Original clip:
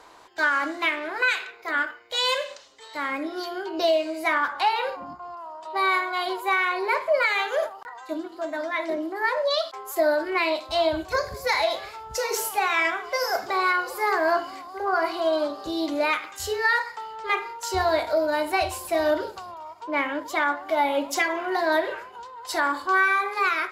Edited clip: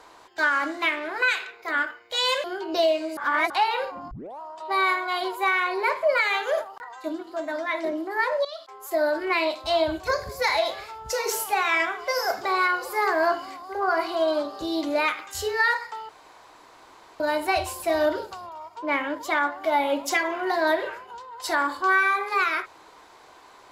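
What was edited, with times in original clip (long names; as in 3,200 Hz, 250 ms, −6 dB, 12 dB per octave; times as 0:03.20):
0:02.44–0:03.49: remove
0:04.22–0:04.55: reverse
0:05.16: tape start 0.29 s
0:09.50–0:10.23: fade in, from −17.5 dB
0:17.14–0:18.25: fill with room tone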